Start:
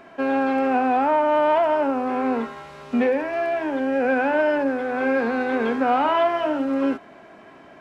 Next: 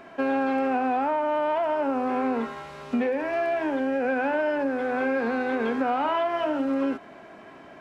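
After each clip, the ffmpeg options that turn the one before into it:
-af "acompressor=threshold=-22dB:ratio=6"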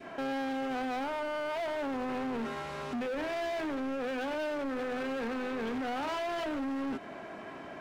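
-af "adynamicequalizer=threshold=0.0112:dfrequency=1000:dqfactor=0.98:tfrequency=1000:tqfactor=0.98:attack=5:release=100:ratio=0.375:range=3:mode=cutabove:tftype=bell,alimiter=level_in=0.5dB:limit=-24dB:level=0:latency=1:release=24,volume=-0.5dB,volume=34.5dB,asoftclip=hard,volume=-34.5dB,volume=2dB"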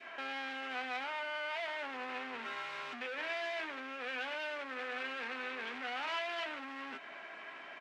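-filter_complex "[0:a]bandpass=f=2.4k:t=q:w=1.2:csg=0,asplit=2[a][b];[b]adelay=12,volume=-11dB[c];[a][c]amix=inputs=2:normalize=0,volume=3.5dB"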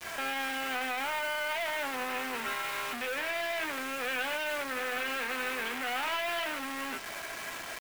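-af "aeval=exprs='0.0501*(cos(1*acos(clip(val(0)/0.0501,-1,1)))-cos(1*PI/2))+0.00708*(cos(2*acos(clip(val(0)/0.0501,-1,1)))-cos(2*PI/2))':c=same,acrusher=bits=7:mix=0:aa=0.000001,alimiter=level_in=7dB:limit=-24dB:level=0:latency=1:release=23,volume=-7dB,volume=7.5dB"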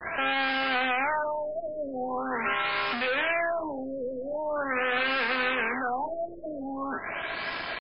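-af "afftfilt=real='re*lt(b*sr/1024,640*pow(5300/640,0.5+0.5*sin(2*PI*0.43*pts/sr)))':imag='im*lt(b*sr/1024,640*pow(5300/640,0.5+0.5*sin(2*PI*0.43*pts/sr)))':win_size=1024:overlap=0.75,volume=7dB"

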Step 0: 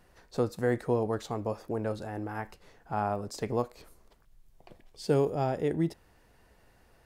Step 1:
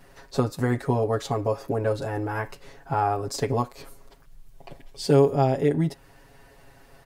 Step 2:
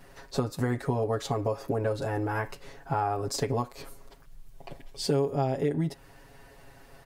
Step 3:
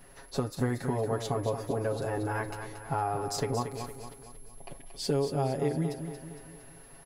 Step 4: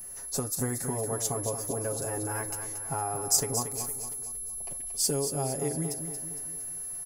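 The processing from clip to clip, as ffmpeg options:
-filter_complex "[0:a]asplit=2[a][b];[b]acompressor=threshold=-34dB:ratio=6,volume=0dB[c];[a][c]amix=inputs=2:normalize=0,aecho=1:1:7.3:0.92,volume=1dB"
-af "acompressor=threshold=-25dB:ratio=3"
-filter_complex "[0:a]aeval=exprs='val(0)+0.00158*sin(2*PI*11000*n/s)':c=same,asplit=2[a][b];[b]aecho=0:1:230|460|690|920|1150:0.376|0.18|0.0866|0.0416|0.02[c];[a][c]amix=inputs=2:normalize=0,volume=-2.5dB"
-af "aexciter=amount=7.5:drive=6.7:freq=5.6k,volume=-2.5dB"

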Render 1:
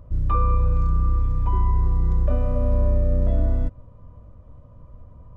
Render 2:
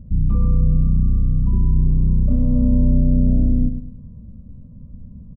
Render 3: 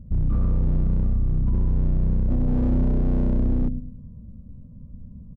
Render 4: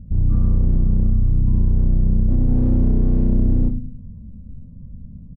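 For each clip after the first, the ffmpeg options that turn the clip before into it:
-filter_complex "[0:a]firequalizer=gain_entry='entry(110,0);entry(210,13);entry(310,-5);entry(830,-22);entry(1900,-26);entry(2800,-19)':delay=0.05:min_phase=1,asplit=2[a][b];[b]aecho=0:1:105|210|315|420:0.376|0.132|0.046|0.0161[c];[a][c]amix=inputs=2:normalize=0,volume=4.5dB"
-af "asoftclip=type=hard:threshold=-13.5dB,volume=-3dB"
-filter_complex "[0:a]lowshelf=f=450:g=9.5,asplit=2[a][b];[b]aecho=0:1:23|65:0.473|0.266[c];[a][c]amix=inputs=2:normalize=0,volume=-5.5dB"

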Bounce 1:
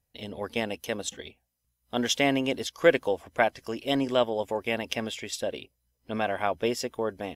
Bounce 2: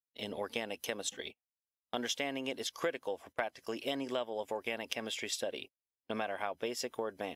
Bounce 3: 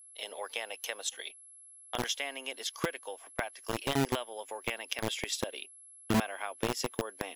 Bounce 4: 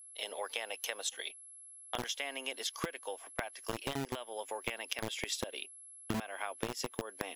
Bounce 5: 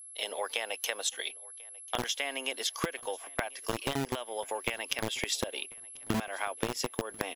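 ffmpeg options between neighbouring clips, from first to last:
-af "agate=range=-27dB:threshold=-44dB:ratio=16:detection=peak,highpass=f=340:p=1,acompressor=threshold=-35dB:ratio=5,volume=1.5dB"
-filter_complex "[0:a]asubboost=boost=8.5:cutoff=200,aeval=exprs='val(0)+0.002*sin(2*PI*11000*n/s)':c=same,acrossover=split=460[a][b];[a]acrusher=bits=4:mix=0:aa=0.000001[c];[c][b]amix=inputs=2:normalize=0,volume=2.5dB"
-af "acompressor=threshold=-33dB:ratio=10,volume=1dB"
-af "aecho=1:1:1041|2082:0.0631|0.0246,volume=5dB"

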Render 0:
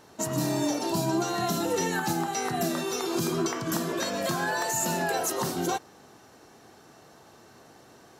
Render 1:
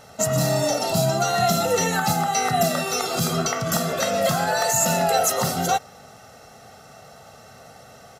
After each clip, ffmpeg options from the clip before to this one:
-af "aecho=1:1:1.5:0.85,volume=5.5dB"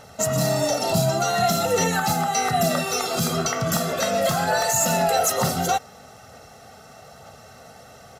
-af "equalizer=f=79:t=o:w=0.41:g=4,asoftclip=type=tanh:threshold=-10dB,aphaser=in_gain=1:out_gain=1:delay=4.7:decay=0.22:speed=1.1:type=sinusoidal"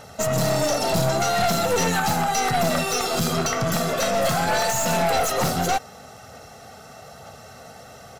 -filter_complex "[0:a]aeval=exprs='0.335*(cos(1*acos(clip(val(0)/0.335,-1,1)))-cos(1*PI/2))+0.075*(cos(4*acos(clip(val(0)/0.335,-1,1)))-cos(4*PI/2))+0.075*(cos(5*acos(clip(val(0)/0.335,-1,1)))-cos(5*PI/2))':c=same,acrossover=split=5100[a][b];[b]alimiter=limit=-17.5dB:level=0:latency=1:release=166[c];[a][c]amix=inputs=2:normalize=0,volume=-4dB"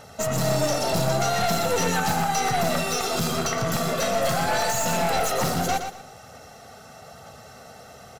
-af "aecho=1:1:119|238|357:0.398|0.0995|0.0249,volume=-2.5dB"

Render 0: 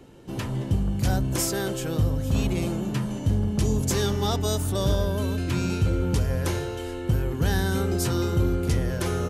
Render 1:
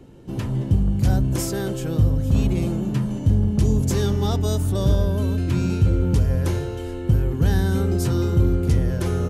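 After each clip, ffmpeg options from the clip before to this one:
-af "lowshelf=f=420:g=9,volume=-3dB"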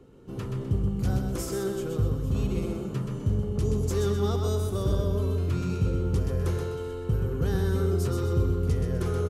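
-af "superequalizer=7b=2:10b=2,aecho=1:1:127|254|381|508|635:0.562|0.208|0.077|0.0285|0.0105,volume=-8.5dB"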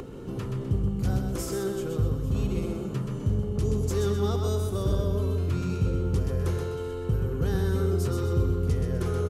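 -af "acompressor=mode=upward:threshold=-28dB:ratio=2.5"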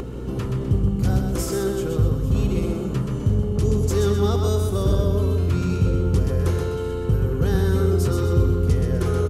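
-af "aeval=exprs='val(0)+0.0126*(sin(2*PI*60*n/s)+sin(2*PI*2*60*n/s)/2+sin(2*PI*3*60*n/s)/3+sin(2*PI*4*60*n/s)/4+sin(2*PI*5*60*n/s)/5)':c=same,volume=6dB"

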